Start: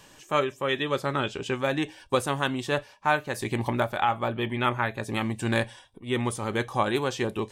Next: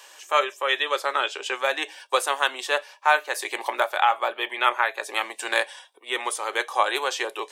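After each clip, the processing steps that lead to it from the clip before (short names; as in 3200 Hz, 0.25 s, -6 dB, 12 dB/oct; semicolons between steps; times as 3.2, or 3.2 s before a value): Bessel high-pass 720 Hz, order 8; gain +6.5 dB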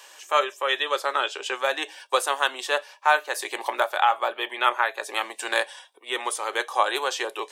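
dynamic EQ 2200 Hz, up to -4 dB, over -37 dBFS, Q 3.5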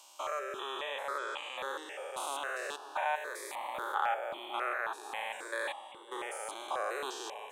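stepped spectrum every 0.2 s; analogue delay 0.552 s, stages 4096, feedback 77%, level -14 dB; step phaser 3.7 Hz 470–1500 Hz; gain -4.5 dB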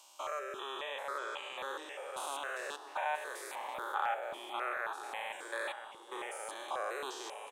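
echo 0.982 s -12.5 dB; gain -2.5 dB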